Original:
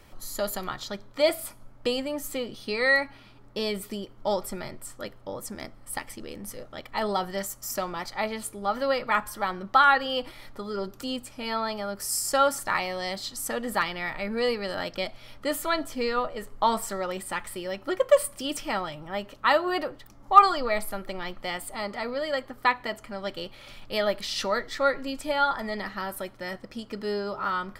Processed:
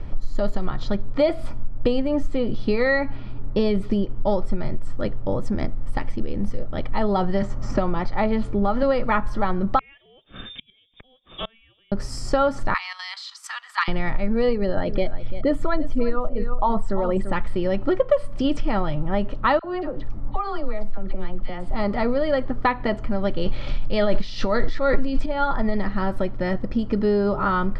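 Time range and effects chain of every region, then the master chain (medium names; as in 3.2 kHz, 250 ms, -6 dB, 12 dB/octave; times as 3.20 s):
7.42–8.83 s: distance through air 63 m + three bands compressed up and down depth 40%
9.79–11.92 s: inverted gate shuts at -25 dBFS, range -32 dB + frequency inversion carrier 3.6 kHz
12.74–13.88 s: steep high-pass 970 Hz 48 dB/octave + treble shelf 2.1 kHz +9.5 dB + level held to a coarse grid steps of 12 dB
14.53–17.33 s: resonances exaggerated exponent 1.5 + delay 341 ms -13 dB
19.59–21.71 s: treble shelf 11 kHz -11.5 dB + compression 2:1, threshold -44 dBFS + phase dispersion lows, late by 58 ms, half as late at 980 Hz
23.42–25.26 s: low-pass 7 kHz + treble shelf 4.1 kHz +9 dB + decay stretcher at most 23 dB/s
whole clip: Chebyshev low-pass 4.8 kHz, order 2; tilt EQ -4 dB/octave; compression 4:1, threshold -25 dBFS; trim +8.5 dB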